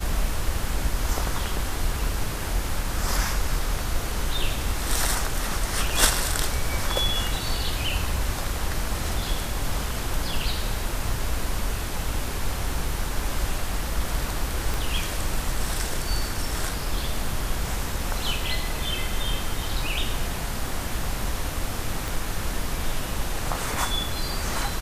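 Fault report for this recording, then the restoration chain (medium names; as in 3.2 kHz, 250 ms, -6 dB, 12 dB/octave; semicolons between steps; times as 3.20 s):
14.74 s: pop
22.08 s: pop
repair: de-click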